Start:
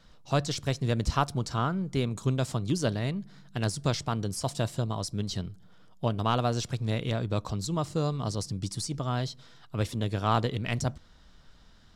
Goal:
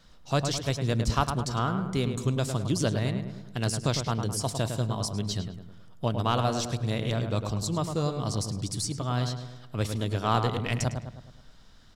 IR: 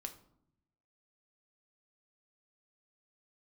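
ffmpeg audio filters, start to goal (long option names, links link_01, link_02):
-filter_complex "[0:a]highshelf=frequency=5100:gain=5.5,asplit=2[link_01][link_02];[link_02]adelay=105,lowpass=frequency=2300:poles=1,volume=-6.5dB,asplit=2[link_03][link_04];[link_04]adelay=105,lowpass=frequency=2300:poles=1,volume=0.52,asplit=2[link_05][link_06];[link_06]adelay=105,lowpass=frequency=2300:poles=1,volume=0.52,asplit=2[link_07][link_08];[link_08]adelay=105,lowpass=frequency=2300:poles=1,volume=0.52,asplit=2[link_09][link_10];[link_10]adelay=105,lowpass=frequency=2300:poles=1,volume=0.52,asplit=2[link_11][link_12];[link_12]adelay=105,lowpass=frequency=2300:poles=1,volume=0.52[link_13];[link_03][link_05][link_07][link_09][link_11][link_13]amix=inputs=6:normalize=0[link_14];[link_01][link_14]amix=inputs=2:normalize=0"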